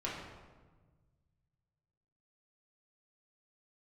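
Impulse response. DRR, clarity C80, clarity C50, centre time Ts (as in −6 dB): −6.5 dB, 4.0 dB, 1.5 dB, 68 ms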